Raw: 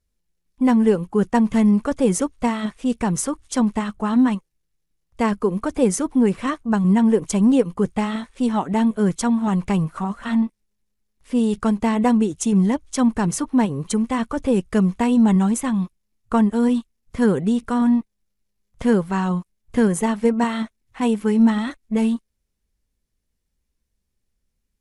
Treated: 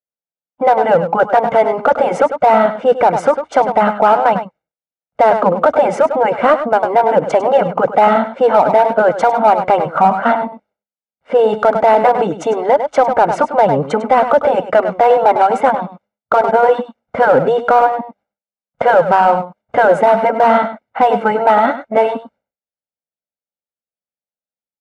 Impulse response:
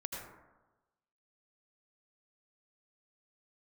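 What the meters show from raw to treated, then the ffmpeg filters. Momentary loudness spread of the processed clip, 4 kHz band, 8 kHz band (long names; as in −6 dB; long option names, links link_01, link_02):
6 LU, +4.0 dB, below −10 dB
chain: -filter_complex "[0:a]agate=range=-33dB:threshold=-47dB:ratio=3:detection=peak,lowpass=1300,afftfilt=real='re*lt(hypot(re,im),0.708)':imag='im*lt(hypot(re,im),0.708)':win_size=1024:overlap=0.75,highpass=360,equalizer=frequency=580:width=1.1:gain=4.5,aecho=1:1:1.4:0.68,asplit=2[link_01][link_02];[link_02]asoftclip=type=hard:threshold=-25dB,volume=-8dB[link_03];[link_01][link_03]amix=inputs=2:normalize=0,aecho=1:1:100:0.251,alimiter=level_in=16.5dB:limit=-1dB:release=50:level=0:latency=1,volume=-1dB"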